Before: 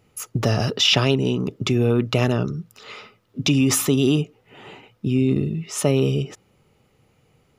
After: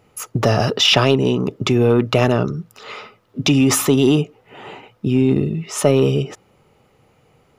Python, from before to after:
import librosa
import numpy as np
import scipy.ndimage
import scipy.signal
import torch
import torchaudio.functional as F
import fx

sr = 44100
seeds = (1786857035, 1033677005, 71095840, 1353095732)

p1 = fx.peak_eq(x, sr, hz=820.0, db=6.5, octaves=2.4)
p2 = np.clip(p1, -10.0 ** (-11.5 / 20.0), 10.0 ** (-11.5 / 20.0))
p3 = p1 + (p2 * 10.0 ** (-7.5 / 20.0))
y = p3 * 10.0 ** (-1.0 / 20.0)